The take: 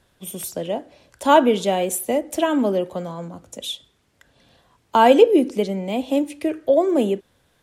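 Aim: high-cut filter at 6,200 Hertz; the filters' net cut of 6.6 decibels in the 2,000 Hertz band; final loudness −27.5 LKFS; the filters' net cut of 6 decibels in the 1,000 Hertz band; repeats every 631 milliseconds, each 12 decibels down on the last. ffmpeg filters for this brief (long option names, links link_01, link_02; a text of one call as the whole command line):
ffmpeg -i in.wav -af "lowpass=6200,equalizer=frequency=1000:width_type=o:gain=-6.5,equalizer=frequency=2000:width_type=o:gain=-6.5,aecho=1:1:631|1262|1893:0.251|0.0628|0.0157,volume=-5.5dB" out.wav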